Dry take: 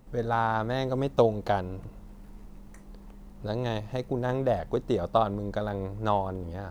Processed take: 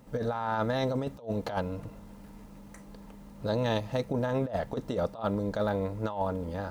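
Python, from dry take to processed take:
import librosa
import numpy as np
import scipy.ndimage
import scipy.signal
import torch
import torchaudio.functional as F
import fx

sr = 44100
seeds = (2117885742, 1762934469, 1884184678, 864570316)

y = fx.notch_comb(x, sr, f0_hz=370.0)
y = fx.over_compress(y, sr, threshold_db=-30.0, ratio=-0.5)
y = fx.low_shelf(y, sr, hz=110.0, db=-9.0)
y = y * 10.0 ** (2.5 / 20.0)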